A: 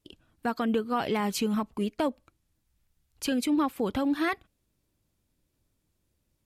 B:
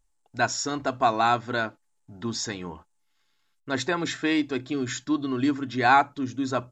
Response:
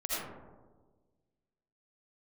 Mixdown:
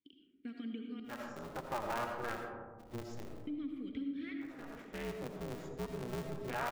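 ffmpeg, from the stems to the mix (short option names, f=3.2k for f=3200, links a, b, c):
-filter_complex "[0:a]asubboost=boost=10.5:cutoff=88,asplit=3[a][b][c];[a]bandpass=f=270:t=q:w=8,volume=0dB[d];[b]bandpass=f=2.29k:t=q:w=8,volume=-6dB[e];[c]bandpass=f=3.01k:t=q:w=8,volume=-9dB[f];[d][e][f]amix=inputs=3:normalize=0,volume=-5dB,asplit=3[g][h][i];[g]atrim=end=1,asetpts=PTS-STARTPTS,afade=t=out:st=0.996:d=0.004:c=hsin[j];[h]atrim=start=1:end=3.47,asetpts=PTS-STARTPTS,volume=0[k];[i]atrim=start=3.47,asetpts=PTS-STARTPTS,afade=t=in:d=0.004:c=hsin[l];[j][k][l]concat=n=3:v=0:a=1,asplit=3[m][n][o];[n]volume=-5dB[p];[1:a]highpass=71,afwtdn=0.0282,aeval=exprs='val(0)*sgn(sin(2*PI*120*n/s))':c=same,adelay=700,volume=-2.5dB,afade=t=in:st=1.41:d=0.57:silence=0.446684,afade=t=out:st=2.8:d=0.68:silence=0.237137,afade=t=in:st=4.82:d=0.45:silence=0.375837,asplit=2[q][r];[r]volume=-7.5dB[s];[o]apad=whole_len=326908[t];[q][t]sidechaincompress=threshold=-59dB:ratio=8:attack=16:release=531[u];[2:a]atrim=start_sample=2205[v];[p][s]amix=inputs=2:normalize=0[w];[w][v]afir=irnorm=-1:irlink=0[x];[m][u][x]amix=inputs=3:normalize=0,acompressor=threshold=-40dB:ratio=2"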